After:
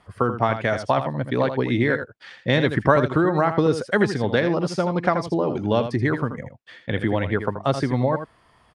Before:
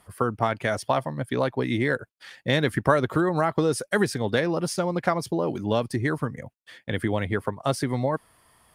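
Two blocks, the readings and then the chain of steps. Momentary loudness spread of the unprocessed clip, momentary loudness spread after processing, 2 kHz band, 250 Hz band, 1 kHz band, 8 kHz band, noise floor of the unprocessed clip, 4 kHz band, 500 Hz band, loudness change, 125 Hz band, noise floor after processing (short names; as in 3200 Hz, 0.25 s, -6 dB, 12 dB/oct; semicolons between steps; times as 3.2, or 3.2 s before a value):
8 LU, 9 LU, +3.0 dB, +4.0 dB, +3.5 dB, -7.0 dB, -65 dBFS, +1.0 dB, +3.5 dB, +3.5 dB, +4.0 dB, -58 dBFS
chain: air absorption 110 m; on a send: echo 81 ms -9.5 dB; on the sum: gain +3.5 dB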